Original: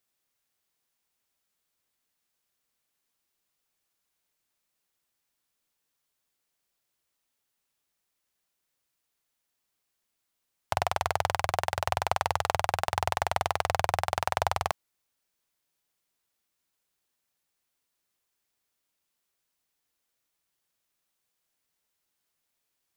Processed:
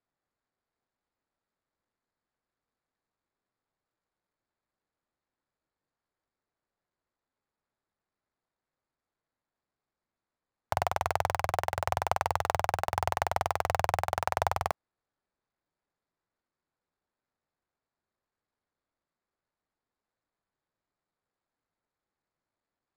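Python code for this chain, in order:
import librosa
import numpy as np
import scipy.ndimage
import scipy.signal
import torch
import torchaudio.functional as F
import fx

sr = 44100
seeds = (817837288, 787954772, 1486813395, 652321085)

y = scipy.signal.medfilt(x, 15)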